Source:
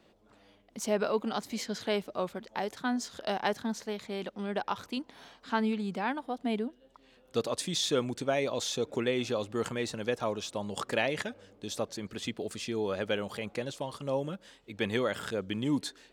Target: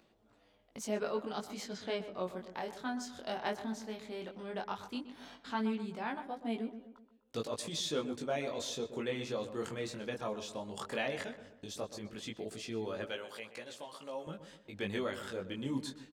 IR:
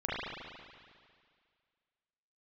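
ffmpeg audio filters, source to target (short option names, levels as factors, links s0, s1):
-filter_complex "[0:a]asettb=1/sr,asplit=3[s0][s1][s2];[s0]atrim=end=1.744[s3];[s1]atrim=start=1.74:end=2.23,asetpts=PTS-STARTPTS,afade=t=in:d=0.004:c=qsin,afade=t=out:st=0.486:d=0.004:c=qsin,lowpass=7300[s4];[s2]atrim=start=2.226[s5];[s3][s4]acrossfade=d=0.004:c1=hsin:c2=qsin[s6];[s6][s5]acrossfade=d=0.004:c1=qsin:c2=hsin,agate=range=0.02:threshold=0.002:ratio=16:detection=peak,asettb=1/sr,asplit=3[s7][s8][s9];[s7]atrim=end=13.054[s10];[s8]atrim=start=13.05:end=14.27,asetpts=PTS-STARTPTS,afade=t=in:d=0.004:c=qsin,afade=t=out:st=1.216:d=0.004:c=qsin,highpass=f=740:p=1[s11];[s9]atrim=start=14.266[s12];[s10][s11]acrossfade=d=0.004:c1=hsin:c2=qsin[s13];[s13][s12]acrossfade=d=0.004:c1=qsin:c2=hsin,acompressor=mode=upward:threshold=0.0158:ratio=2.5,flanger=delay=17.5:depth=5.8:speed=0.15,asplit=2[s14][s15];[s15]adelay=126,lowpass=f=2000:p=1,volume=0.282,asplit=2[s16][s17];[s17]adelay=126,lowpass=f=2000:p=1,volume=0.47,asplit=2[s18][s19];[s19]adelay=126,lowpass=f=2000:p=1,volume=0.47,asplit=2[s20][s21];[s21]adelay=126,lowpass=f=2000:p=1,volume=0.47,asplit=2[s22][s23];[s23]adelay=126,lowpass=f=2000:p=1,volume=0.47[s24];[s16][s18][s20][s22][s24]amix=inputs=5:normalize=0[s25];[s14][s25]amix=inputs=2:normalize=0,volume=0.668"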